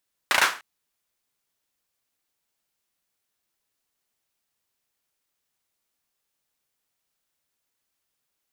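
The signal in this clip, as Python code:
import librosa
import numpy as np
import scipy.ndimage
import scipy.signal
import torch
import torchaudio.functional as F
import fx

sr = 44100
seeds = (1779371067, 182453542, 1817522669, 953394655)

y = fx.drum_clap(sr, seeds[0], length_s=0.3, bursts=4, spacing_ms=35, hz=1400.0, decay_s=0.33)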